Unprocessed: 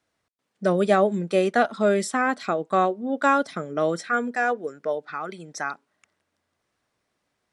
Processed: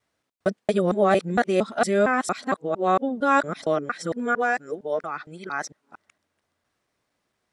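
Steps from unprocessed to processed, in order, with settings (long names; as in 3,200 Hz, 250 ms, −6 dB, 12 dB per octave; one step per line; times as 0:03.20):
reversed piece by piece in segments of 229 ms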